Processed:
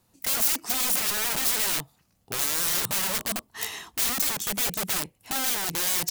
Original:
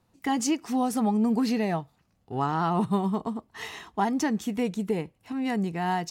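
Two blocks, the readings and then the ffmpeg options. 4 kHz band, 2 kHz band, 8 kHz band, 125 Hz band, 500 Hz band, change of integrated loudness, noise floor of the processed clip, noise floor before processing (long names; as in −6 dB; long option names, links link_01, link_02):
+12.0 dB, +6.0 dB, +14.0 dB, −10.0 dB, −7.5 dB, +3.0 dB, −68 dBFS, −69 dBFS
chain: -af "aeval=exprs='(mod(26.6*val(0)+1,2)-1)/26.6':channel_layout=same,crystalizer=i=2.5:c=0"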